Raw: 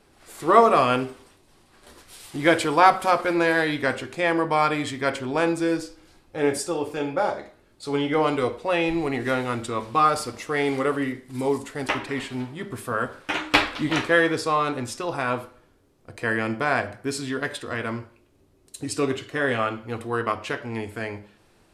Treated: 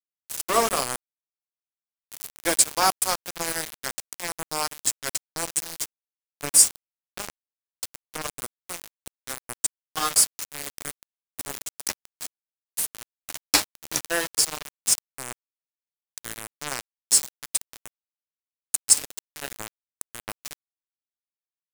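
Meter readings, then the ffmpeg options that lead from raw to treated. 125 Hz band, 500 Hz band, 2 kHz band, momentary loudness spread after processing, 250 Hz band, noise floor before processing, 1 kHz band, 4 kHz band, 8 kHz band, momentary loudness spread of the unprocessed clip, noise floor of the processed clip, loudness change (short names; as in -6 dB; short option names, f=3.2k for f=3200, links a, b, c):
-14.5 dB, -12.5 dB, -9.0 dB, 19 LU, -15.5 dB, -59 dBFS, -9.0 dB, +2.5 dB, +16.5 dB, 12 LU, under -85 dBFS, -0.5 dB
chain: -af "aexciter=amount=14.9:drive=4.2:freq=4.7k,aeval=exprs='val(0)*gte(abs(val(0)),0.2)':c=same,volume=-6dB"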